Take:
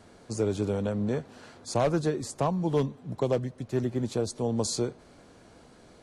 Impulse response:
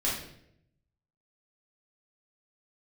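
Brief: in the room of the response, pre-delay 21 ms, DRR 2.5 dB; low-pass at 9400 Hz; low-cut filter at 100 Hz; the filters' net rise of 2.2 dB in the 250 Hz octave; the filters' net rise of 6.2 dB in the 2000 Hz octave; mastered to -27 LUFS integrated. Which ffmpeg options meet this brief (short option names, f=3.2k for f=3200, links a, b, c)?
-filter_complex "[0:a]highpass=100,lowpass=9.4k,equalizer=f=250:t=o:g=3,equalizer=f=2k:t=o:g=8,asplit=2[a][b];[1:a]atrim=start_sample=2205,adelay=21[c];[b][c]afir=irnorm=-1:irlink=0,volume=-10.5dB[d];[a][d]amix=inputs=2:normalize=0,volume=-1dB"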